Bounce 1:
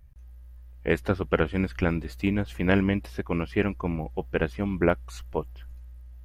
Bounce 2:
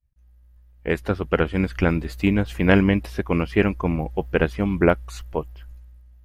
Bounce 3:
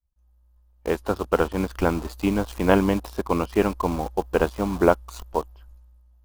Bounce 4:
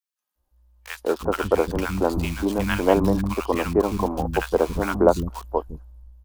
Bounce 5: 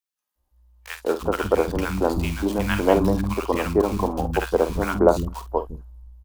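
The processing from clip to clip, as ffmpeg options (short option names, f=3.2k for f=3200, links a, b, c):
-af "dynaudnorm=f=320:g=9:m=11.5dB,agate=range=-33dB:threshold=-40dB:ratio=3:detection=peak"
-filter_complex "[0:a]asplit=2[a][b];[b]acrusher=bits=4:mix=0:aa=0.000001,volume=-3.5dB[c];[a][c]amix=inputs=2:normalize=0,equalizer=f=125:t=o:w=1:g=-12,equalizer=f=1k:t=o:w=1:g=8,equalizer=f=2k:t=o:w=1:g=-11,volume=-4.5dB"
-filter_complex "[0:a]acrossover=split=230|1200[a][b][c];[b]adelay=190[d];[a]adelay=350[e];[e][d][c]amix=inputs=3:normalize=0,volume=2.5dB"
-filter_complex "[0:a]asplit=2[a][b];[b]adelay=49,volume=-11.5dB[c];[a][c]amix=inputs=2:normalize=0"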